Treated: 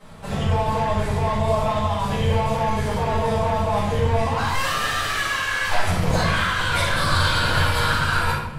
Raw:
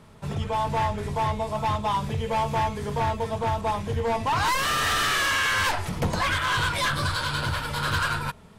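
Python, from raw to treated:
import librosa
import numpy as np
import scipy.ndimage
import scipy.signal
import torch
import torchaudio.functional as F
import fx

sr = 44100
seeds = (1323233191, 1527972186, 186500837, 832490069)

y = fx.low_shelf(x, sr, hz=320.0, db=-5.5)
y = fx.over_compress(y, sr, threshold_db=-29.0, ratio=-1.0)
y = fx.room_shoebox(y, sr, seeds[0], volume_m3=240.0, walls='mixed', distance_m=6.5)
y = y * 10.0 ** (-8.5 / 20.0)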